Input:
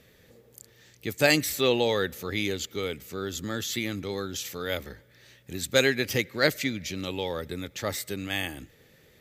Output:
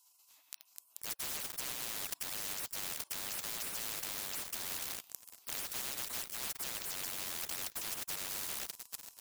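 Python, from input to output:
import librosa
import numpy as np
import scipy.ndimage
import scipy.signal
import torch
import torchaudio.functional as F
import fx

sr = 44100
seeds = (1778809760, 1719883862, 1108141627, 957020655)

y = fx.spec_gate(x, sr, threshold_db=-25, keep='weak')
y = scipy.signal.sosfilt(scipy.signal.butter(2, 190.0, 'highpass', fs=sr, output='sos'), y)
y = fx.peak_eq(y, sr, hz=1600.0, db=-9.0, octaves=1.4)
y = fx.rider(y, sr, range_db=4, speed_s=2.0)
y = 10.0 ** (-22.5 / 20.0) * np.tanh(y / 10.0 ** (-22.5 / 20.0))
y = fx.high_shelf(y, sr, hz=2700.0, db=2.5)
y = fx.small_body(y, sr, hz=(1000.0, 2600.0), ring_ms=45, db=9)
y = fx.leveller(y, sr, passes=5)
y = fx.spectral_comp(y, sr, ratio=10.0)
y = y * 10.0 ** (4.0 / 20.0)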